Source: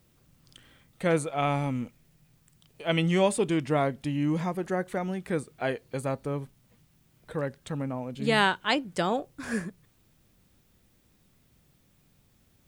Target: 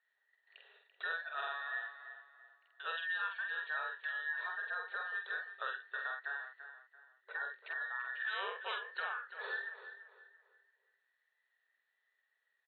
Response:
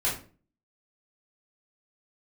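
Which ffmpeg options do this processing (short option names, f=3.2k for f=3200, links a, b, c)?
-filter_complex "[0:a]afftfilt=real='real(if(between(b,1,1012),(2*floor((b-1)/92)+1)*92-b,b),0)':imag='imag(if(between(b,1,1012),(2*floor((b-1)/92)+1)*92-b,b),0)*if(between(b,1,1012),-1,1)':win_size=2048:overlap=0.75,agate=range=-12dB:threshold=-58dB:ratio=16:detection=peak,afftfilt=real='re*between(b*sr/4096,380,4400)':imag='im*between(b*sr/4096,380,4400)':win_size=4096:overlap=0.75,acompressor=threshold=-32dB:ratio=6,asplit=2[a][b];[b]adelay=47,volume=-4dB[c];[a][c]amix=inputs=2:normalize=0,asplit=2[d][e];[e]adelay=338,lowpass=f=3.4k:p=1,volume=-10.5dB,asplit=2[f][g];[g]adelay=338,lowpass=f=3.4k:p=1,volume=0.36,asplit=2[h][i];[i]adelay=338,lowpass=f=3.4k:p=1,volume=0.36,asplit=2[j][k];[k]adelay=338,lowpass=f=3.4k:p=1,volume=0.36[l];[d][f][h][j][l]amix=inputs=5:normalize=0,volume=-6dB"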